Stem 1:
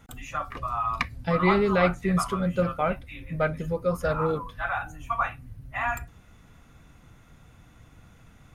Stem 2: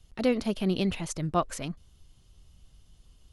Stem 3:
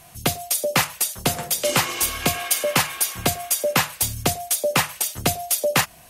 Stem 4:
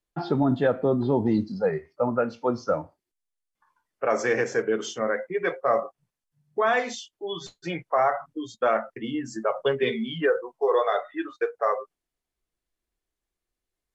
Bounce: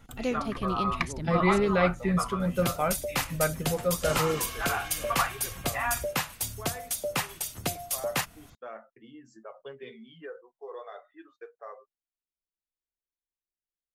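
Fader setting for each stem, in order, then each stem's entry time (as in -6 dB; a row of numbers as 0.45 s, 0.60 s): -2.0 dB, -5.0 dB, -10.0 dB, -19.5 dB; 0.00 s, 0.00 s, 2.40 s, 0.00 s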